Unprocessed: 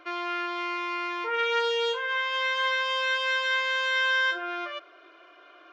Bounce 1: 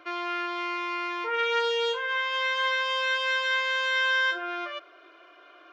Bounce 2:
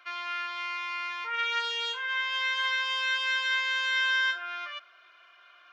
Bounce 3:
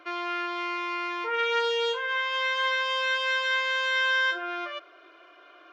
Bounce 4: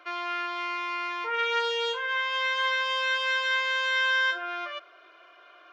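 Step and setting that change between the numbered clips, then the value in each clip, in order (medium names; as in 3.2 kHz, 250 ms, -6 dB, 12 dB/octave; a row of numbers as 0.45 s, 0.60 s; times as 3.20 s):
high-pass, cutoff frequency: 52 Hz, 1.3 kHz, 150 Hz, 490 Hz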